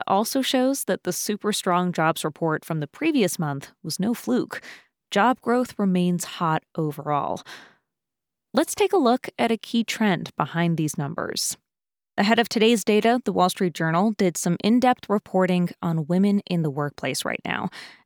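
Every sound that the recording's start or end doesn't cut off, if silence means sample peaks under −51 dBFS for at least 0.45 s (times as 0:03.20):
0:08.54–0:11.56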